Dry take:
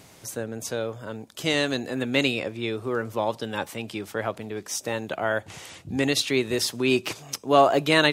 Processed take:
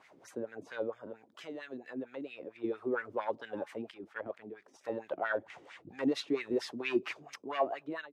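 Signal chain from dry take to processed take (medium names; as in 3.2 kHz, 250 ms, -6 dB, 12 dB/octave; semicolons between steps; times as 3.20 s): fade out at the end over 0.88 s; 0.98–2.64 s: compression 6:1, threshold -32 dBFS, peak gain reduction 14.5 dB; saturation -17 dBFS, distortion -15 dB; 3.91–4.81 s: level held to a coarse grid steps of 10 dB; wah-wah 4.4 Hz 270–2100 Hz, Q 3.1; trim +1 dB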